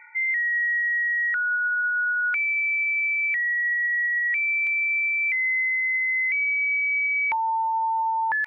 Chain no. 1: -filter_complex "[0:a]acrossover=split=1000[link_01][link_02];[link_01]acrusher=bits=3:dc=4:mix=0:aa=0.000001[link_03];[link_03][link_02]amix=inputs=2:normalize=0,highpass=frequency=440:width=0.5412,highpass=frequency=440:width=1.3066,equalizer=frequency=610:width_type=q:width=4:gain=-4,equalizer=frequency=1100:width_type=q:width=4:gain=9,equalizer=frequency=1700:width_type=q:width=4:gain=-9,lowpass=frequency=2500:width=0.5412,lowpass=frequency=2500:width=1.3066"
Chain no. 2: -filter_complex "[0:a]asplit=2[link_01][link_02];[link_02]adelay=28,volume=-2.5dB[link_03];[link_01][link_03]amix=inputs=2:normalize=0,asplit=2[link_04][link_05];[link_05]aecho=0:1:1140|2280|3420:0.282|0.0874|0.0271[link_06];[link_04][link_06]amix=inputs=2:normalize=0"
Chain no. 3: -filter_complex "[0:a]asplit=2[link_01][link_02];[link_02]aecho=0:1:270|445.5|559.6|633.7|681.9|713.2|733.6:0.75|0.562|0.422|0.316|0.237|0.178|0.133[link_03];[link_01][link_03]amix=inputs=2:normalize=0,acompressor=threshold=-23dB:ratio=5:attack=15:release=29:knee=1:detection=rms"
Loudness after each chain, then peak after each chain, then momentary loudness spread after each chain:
−25.5, −18.5, −22.0 LKFS; −18.5, −13.5, −14.5 dBFS; 3, 4, 4 LU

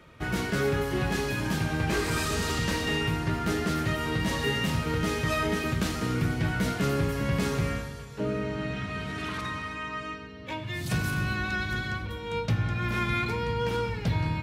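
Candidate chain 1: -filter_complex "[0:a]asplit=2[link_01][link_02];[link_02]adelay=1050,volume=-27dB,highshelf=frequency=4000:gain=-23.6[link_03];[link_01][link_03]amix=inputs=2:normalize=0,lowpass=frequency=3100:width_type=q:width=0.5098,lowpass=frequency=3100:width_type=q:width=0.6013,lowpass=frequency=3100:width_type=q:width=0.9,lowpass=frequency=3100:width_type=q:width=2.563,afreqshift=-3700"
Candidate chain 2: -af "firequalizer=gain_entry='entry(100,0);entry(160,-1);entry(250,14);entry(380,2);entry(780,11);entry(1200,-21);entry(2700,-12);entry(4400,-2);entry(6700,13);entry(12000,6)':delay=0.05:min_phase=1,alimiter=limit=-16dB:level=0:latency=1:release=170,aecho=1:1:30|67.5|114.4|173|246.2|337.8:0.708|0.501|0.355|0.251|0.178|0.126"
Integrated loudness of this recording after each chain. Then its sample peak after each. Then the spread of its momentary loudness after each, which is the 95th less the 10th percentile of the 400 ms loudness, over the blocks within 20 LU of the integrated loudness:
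−26.0, −24.5 LKFS; −15.0, −10.0 dBFS; 7, 6 LU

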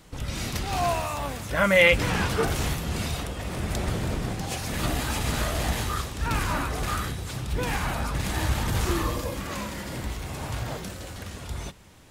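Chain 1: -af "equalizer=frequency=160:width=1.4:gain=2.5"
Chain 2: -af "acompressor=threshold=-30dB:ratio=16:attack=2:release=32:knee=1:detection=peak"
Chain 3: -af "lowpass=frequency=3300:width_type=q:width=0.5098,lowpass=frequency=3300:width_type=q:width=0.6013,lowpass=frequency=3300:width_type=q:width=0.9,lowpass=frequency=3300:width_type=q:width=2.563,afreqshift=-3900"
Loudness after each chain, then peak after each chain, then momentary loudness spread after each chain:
−27.0, −34.5, −24.0 LKFS; −6.5, −21.5, −5.0 dBFS; 9, 3, 9 LU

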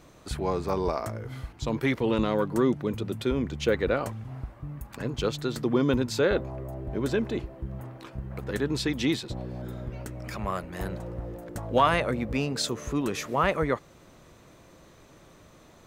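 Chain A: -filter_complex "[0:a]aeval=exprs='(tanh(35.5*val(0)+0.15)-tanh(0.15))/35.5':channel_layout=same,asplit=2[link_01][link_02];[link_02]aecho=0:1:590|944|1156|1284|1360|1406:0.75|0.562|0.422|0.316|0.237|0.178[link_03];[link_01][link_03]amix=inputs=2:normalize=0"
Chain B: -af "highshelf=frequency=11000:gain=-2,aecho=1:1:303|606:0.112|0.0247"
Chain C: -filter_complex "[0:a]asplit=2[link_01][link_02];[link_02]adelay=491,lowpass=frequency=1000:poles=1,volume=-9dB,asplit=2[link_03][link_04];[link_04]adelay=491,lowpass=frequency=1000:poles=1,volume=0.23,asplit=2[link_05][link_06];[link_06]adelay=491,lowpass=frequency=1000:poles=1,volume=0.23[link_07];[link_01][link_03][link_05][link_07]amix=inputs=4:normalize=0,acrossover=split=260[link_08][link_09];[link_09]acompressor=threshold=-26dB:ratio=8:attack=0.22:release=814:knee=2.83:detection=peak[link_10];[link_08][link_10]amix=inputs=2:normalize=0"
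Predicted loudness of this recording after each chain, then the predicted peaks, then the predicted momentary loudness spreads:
−33.0, −29.0, −32.5 LKFS; −20.0, −9.0, −15.5 dBFS; 4, 14, 9 LU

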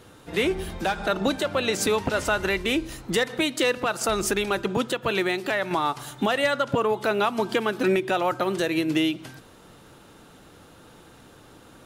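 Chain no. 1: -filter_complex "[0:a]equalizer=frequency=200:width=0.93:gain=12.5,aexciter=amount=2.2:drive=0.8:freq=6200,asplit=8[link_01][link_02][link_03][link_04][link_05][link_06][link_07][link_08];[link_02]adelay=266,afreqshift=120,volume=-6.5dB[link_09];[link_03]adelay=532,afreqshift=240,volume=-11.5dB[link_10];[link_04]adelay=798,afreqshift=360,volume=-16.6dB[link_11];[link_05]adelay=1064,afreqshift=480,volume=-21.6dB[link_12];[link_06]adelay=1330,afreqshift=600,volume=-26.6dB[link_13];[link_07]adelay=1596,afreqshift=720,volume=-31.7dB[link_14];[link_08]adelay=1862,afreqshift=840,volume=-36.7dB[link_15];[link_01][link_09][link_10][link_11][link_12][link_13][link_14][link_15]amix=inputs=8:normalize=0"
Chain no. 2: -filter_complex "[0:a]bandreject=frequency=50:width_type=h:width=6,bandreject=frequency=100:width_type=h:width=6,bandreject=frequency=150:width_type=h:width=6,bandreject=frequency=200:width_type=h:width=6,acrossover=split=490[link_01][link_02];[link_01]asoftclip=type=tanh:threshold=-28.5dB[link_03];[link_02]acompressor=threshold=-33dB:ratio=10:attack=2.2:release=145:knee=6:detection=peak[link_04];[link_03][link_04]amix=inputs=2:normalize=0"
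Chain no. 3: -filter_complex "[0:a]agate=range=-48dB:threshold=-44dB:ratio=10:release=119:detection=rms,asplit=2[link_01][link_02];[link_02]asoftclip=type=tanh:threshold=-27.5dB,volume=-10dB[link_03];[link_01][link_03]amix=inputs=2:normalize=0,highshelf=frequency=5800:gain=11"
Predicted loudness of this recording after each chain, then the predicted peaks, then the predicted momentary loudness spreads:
−19.0, −32.0, −22.5 LKFS; −2.0, −20.0, −6.0 dBFS; 7, 20, 5 LU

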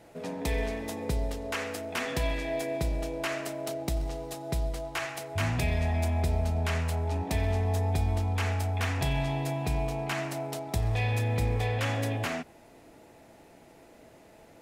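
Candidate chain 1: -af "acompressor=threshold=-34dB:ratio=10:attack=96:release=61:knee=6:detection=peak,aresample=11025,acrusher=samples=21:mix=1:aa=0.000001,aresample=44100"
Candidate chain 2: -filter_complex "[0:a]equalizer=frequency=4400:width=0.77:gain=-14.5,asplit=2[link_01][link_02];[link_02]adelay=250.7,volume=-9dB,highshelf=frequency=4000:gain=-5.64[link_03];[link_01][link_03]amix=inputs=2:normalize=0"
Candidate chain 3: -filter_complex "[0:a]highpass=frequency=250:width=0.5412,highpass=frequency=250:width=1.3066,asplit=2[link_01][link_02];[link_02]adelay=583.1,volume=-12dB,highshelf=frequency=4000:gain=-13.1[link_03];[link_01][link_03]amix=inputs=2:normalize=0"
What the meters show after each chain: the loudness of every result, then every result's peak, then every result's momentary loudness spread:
−34.5, −31.5, −34.5 LKFS; −20.0, −17.5, −18.0 dBFS; 4, 8, 5 LU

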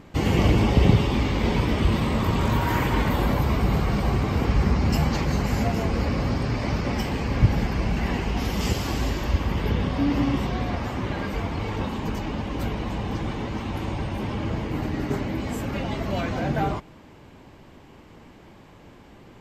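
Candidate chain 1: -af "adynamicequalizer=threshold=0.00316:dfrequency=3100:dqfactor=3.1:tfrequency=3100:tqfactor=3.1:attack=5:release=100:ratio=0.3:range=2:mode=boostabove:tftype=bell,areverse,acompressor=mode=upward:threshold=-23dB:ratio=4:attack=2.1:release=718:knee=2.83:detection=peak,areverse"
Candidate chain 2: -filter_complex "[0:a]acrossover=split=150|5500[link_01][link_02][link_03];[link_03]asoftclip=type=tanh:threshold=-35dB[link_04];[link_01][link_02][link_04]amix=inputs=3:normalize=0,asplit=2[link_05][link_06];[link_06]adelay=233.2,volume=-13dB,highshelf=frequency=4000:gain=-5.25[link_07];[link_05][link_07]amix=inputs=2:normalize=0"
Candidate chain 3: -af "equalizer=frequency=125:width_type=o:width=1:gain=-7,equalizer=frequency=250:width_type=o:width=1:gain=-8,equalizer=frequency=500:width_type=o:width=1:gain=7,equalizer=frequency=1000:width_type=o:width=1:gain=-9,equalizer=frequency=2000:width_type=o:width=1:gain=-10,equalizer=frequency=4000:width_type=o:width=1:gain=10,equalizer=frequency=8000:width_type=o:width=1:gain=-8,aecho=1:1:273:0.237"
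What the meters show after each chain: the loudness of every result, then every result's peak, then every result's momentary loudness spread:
−24.5, −24.5, −28.0 LKFS; −4.0, −5.0, −7.5 dBFS; 14, 8, 8 LU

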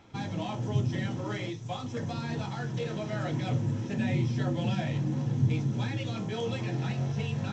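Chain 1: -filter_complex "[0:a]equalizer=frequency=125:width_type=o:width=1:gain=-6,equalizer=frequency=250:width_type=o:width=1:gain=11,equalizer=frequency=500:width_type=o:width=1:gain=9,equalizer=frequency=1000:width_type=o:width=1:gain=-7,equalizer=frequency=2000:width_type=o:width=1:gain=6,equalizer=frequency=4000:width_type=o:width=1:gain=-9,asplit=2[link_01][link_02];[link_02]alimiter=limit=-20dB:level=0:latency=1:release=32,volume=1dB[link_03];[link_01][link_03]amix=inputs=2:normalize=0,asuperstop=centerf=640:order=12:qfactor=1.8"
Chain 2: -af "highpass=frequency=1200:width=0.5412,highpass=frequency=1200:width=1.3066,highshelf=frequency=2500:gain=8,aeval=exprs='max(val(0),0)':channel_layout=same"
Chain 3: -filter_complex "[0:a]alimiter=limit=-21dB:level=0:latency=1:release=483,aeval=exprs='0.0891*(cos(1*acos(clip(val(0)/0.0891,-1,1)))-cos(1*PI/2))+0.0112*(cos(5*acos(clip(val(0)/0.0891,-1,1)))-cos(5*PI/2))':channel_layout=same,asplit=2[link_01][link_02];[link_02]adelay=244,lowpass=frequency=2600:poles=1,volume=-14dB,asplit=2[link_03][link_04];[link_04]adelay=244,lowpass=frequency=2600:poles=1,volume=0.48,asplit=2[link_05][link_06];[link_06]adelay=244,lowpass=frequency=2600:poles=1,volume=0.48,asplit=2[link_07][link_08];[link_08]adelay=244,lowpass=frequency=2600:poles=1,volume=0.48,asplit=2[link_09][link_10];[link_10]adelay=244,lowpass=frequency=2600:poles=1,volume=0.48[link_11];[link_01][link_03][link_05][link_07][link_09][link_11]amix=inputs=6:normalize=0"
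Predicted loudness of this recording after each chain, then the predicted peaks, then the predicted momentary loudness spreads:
−21.5, −44.0, −31.0 LKFS; −9.0, −25.5, −19.0 dBFS; 4, 5, 2 LU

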